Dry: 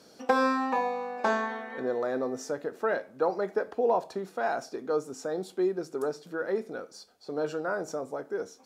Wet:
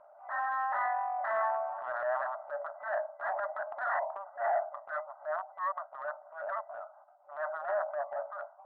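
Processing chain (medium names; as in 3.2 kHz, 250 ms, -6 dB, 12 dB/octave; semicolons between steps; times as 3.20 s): local Wiener filter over 25 samples; sine folder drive 16 dB, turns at -13 dBFS; FFT band-pass 560–2000 Hz; distance through air 490 m; transient shaper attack -9 dB, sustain +5 dB; trim -8 dB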